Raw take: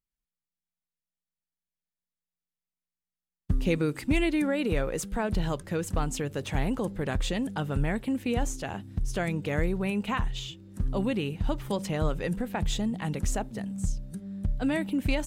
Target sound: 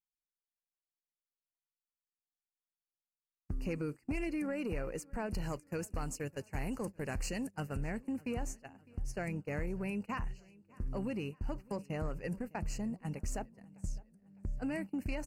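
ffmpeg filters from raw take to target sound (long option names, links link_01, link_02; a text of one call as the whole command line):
ffmpeg -i in.wav -filter_complex "[0:a]agate=range=-27dB:threshold=-30dB:ratio=16:detection=peak,asettb=1/sr,asplit=3[link_01][link_02][link_03];[link_01]atrim=end=5.314[link_04];[link_02]atrim=start=5.31:end=7.77,asetpts=PTS-STARTPTS,afade=type=in:duration=0.004:curve=qsin,afade=type=out:start_time=2.456:duration=0.004:curve=qsin,highshelf=frequency=3000:gain=9[link_05];[link_03]atrim=start=7.766[link_06];[link_04][link_05]acrossfade=duration=0.004:curve1=hsin:curve2=qsin[link_07];[link_07][link_06]acrossfade=duration=0.004:curve1=qsin:curve2=hsin,acompressor=threshold=-55dB:ratio=2,asoftclip=type=tanh:threshold=-36dB,asuperstop=centerf=3500:order=12:qfactor=2.7,aecho=1:1:606|1212|1818:0.0631|0.0284|0.0128,volume=8dB" out.wav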